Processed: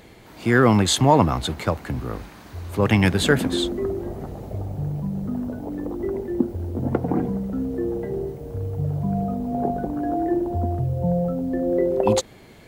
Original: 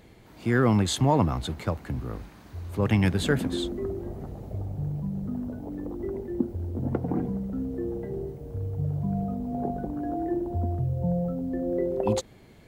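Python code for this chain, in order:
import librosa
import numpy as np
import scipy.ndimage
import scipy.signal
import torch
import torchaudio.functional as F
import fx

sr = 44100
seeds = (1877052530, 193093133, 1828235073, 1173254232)

y = fx.low_shelf(x, sr, hz=290.0, db=-6.0)
y = F.gain(torch.from_numpy(y), 8.5).numpy()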